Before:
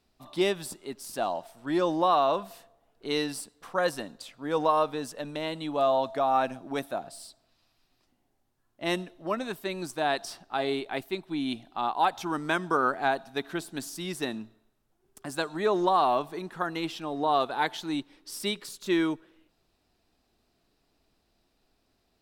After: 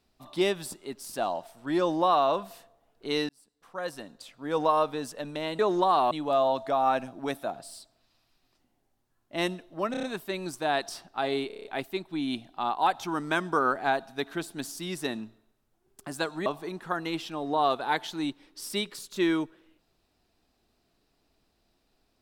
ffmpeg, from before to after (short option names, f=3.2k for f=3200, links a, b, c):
-filter_complex "[0:a]asplit=15[a][b][c][d][e][f][g][h][i][j][k][l][m][n][o];[a]atrim=end=3.29,asetpts=PTS-STARTPTS,afade=t=out:st=3.286:d=0.004:c=hsin[p];[b]atrim=start=3.29:end=5.592,asetpts=PTS-STARTPTS,afade=t=in:d=1.33[q];[c]atrim=start=15.638:end=16.162[r];[d]atrim=start=5.588:end=9.422[s];[e]atrim=start=9.388:end=9.422[t];[f]atrim=start=9.388:end=9.422[u];[g]atrim=start=9.388:end=9.422[v];[h]atrim=start=9.388:end=10.862[w];[i]atrim=start=10.828:end=10.862[x];[j]atrim=start=10.828:end=10.862[y];[k]atrim=start=10.828:end=10.862[z];[l]atrim=start=10.828:end=10.862[aa];[m]atrim=start=10.828:end=10.862[ab];[n]atrim=start=10.828:end=15.642[ac];[o]atrim=start=16.158[ad];[p][q]concat=n=2:v=0:a=1[ae];[ae][r]acrossfade=d=0.004:c1=hsin:c2=hsin[af];[af][s]acrossfade=d=0.004:c1=hsin:c2=hsin[ag];[ag][t]acrossfade=d=0.004:c1=hsin:c2=hsin[ah];[ah][u]acrossfade=d=0.004:c1=hsin:c2=hsin[ai];[ai][v]acrossfade=d=0.004:c1=hsin:c2=hsin[aj];[aj][w]acrossfade=d=0.004:c1=hsin:c2=hsin[ak];[ak][x]acrossfade=d=0.004:c1=hsin:c2=hsin[al];[al][y]acrossfade=d=0.004:c1=hsin:c2=hsin[am];[am][z]acrossfade=d=0.004:c1=hsin:c2=hsin[an];[an][aa]acrossfade=d=0.004:c1=hsin:c2=hsin[ao];[ao][ab]acrossfade=d=0.004:c1=hsin:c2=hsin[ap];[ap][ac]acrossfade=d=0.004:c1=hsin:c2=hsin[aq];[aq][ad]acrossfade=d=0.004:c1=hsin:c2=hsin"